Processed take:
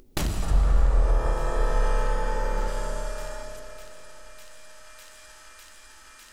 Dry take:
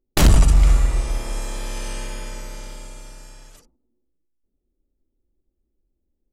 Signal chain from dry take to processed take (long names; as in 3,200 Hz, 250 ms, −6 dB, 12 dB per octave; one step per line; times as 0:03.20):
0:00.43–0:03.43: gain on a spectral selection 390–1,900 Hz +11 dB
delay with a high-pass on its return 602 ms, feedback 74%, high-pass 2,100 Hz, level −18 dB
downward compressor 4 to 1, threshold −27 dBFS, peak gain reduction 15 dB
0:00.51–0:02.68: spectral tilt −2 dB per octave
convolution reverb RT60 3.4 s, pre-delay 50 ms, DRR 5 dB
upward compression, threshold −36 dBFS